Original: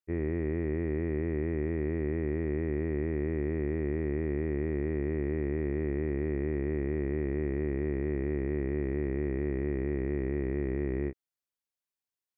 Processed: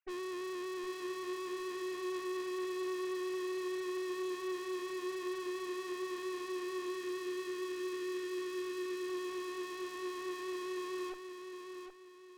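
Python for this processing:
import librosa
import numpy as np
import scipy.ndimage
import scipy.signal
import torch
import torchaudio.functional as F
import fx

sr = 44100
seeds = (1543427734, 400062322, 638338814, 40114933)

p1 = fx.sine_speech(x, sr)
p2 = fx.tube_stage(p1, sr, drive_db=54.0, bias=0.75)
p3 = fx.spec_box(p2, sr, start_s=6.94, length_s=2.14, low_hz=480.0, high_hz=1100.0, gain_db=-7)
p4 = p3 + fx.echo_feedback(p3, sr, ms=763, feedback_pct=35, wet_db=-7, dry=0)
y = F.gain(torch.from_numpy(p4), 14.0).numpy()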